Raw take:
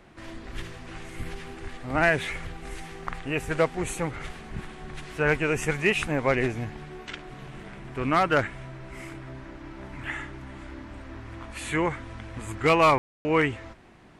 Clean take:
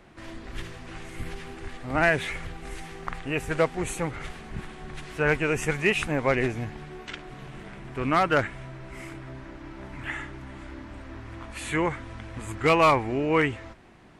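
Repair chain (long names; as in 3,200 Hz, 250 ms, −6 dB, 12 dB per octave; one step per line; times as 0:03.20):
ambience match 0:12.98–0:13.25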